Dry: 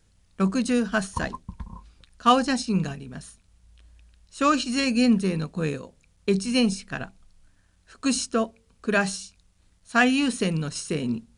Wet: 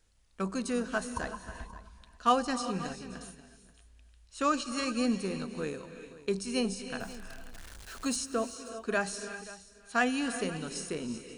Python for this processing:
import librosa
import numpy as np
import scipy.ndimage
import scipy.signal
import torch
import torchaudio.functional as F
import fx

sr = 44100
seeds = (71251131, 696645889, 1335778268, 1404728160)

y = fx.zero_step(x, sr, step_db=-36.5, at=(7.0, 8.16))
y = fx.peak_eq(y, sr, hz=140.0, db=-10.5, octaves=1.7)
y = fx.rev_gated(y, sr, seeds[0], gate_ms=410, shape='rising', drr_db=11.0)
y = fx.dynamic_eq(y, sr, hz=2900.0, q=0.73, threshold_db=-40.0, ratio=4.0, max_db=-6)
y = y + 10.0 ** (-18.0 / 20.0) * np.pad(y, (int(533 * sr / 1000.0), 0))[:len(y)]
y = y * librosa.db_to_amplitude(-4.5)